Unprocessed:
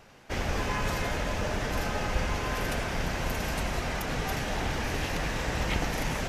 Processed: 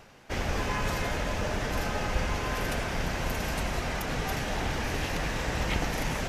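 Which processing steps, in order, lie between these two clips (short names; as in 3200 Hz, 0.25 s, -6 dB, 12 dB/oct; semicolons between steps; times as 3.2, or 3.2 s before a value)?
reverse; upward compressor, threshold -42 dBFS; reverse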